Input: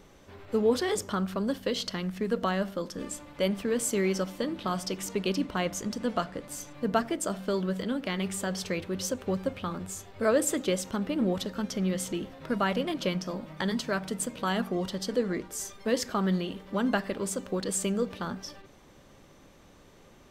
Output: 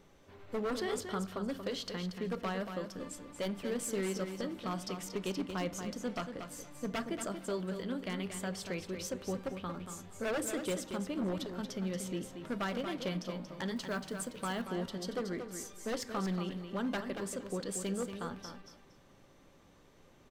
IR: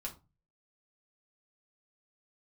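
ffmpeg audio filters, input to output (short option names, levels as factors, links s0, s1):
-filter_complex "[0:a]aeval=exprs='0.0841*(abs(mod(val(0)/0.0841+3,4)-2)-1)':c=same,aecho=1:1:232|464|696:0.398|0.0717|0.0129,asettb=1/sr,asplit=3[s0][s1][s2];[s0]atrim=end=13.764[s3];[s1]atrim=start=13.76:end=14.62,asetpts=PTS-STARTPTS,afade=t=in:d=0.004:c=qsin,afade=t=out:st=0.856:d=0.004:c=qsin,acrusher=bits=7:mode=log:mix=0:aa=0.000001[s4];[s2]atrim=start=14.616[s5];[s3][s4]acrossfade=d=0.004:c1=hsin:c2=qsin[s6];[s6][s5]acrossfade=d=0.004:c1=qsin:c2=hsin,asplit=2[s7][s8];[1:a]atrim=start_sample=2205,asetrate=35280,aresample=44100,lowpass=5700[s9];[s8][s9]afir=irnorm=-1:irlink=0,volume=0.251[s10];[s7][s10]amix=inputs=2:normalize=0,volume=0.376"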